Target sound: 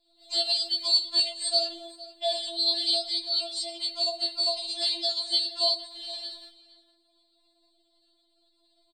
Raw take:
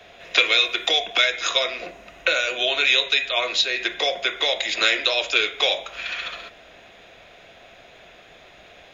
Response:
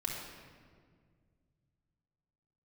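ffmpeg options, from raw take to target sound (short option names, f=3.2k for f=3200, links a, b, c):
-filter_complex "[0:a]agate=range=-33dB:threshold=-38dB:ratio=3:detection=peak,asplit=2[a][b];[b]adelay=460.6,volume=-16dB,highshelf=f=4k:g=-10.4[c];[a][c]amix=inputs=2:normalize=0,afftfilt=real='hypot(re,im)*cos(PI*b)':imag='0':win_size=2048:overlap=0.75,asetrate=57191,aresample=44100,atempo=0.771105,afftfilt=real='re*4*eq(mod(b,16),0)':imag='im*4*eq(mod(b,16),0)':win_size=2048:overlap=0.75"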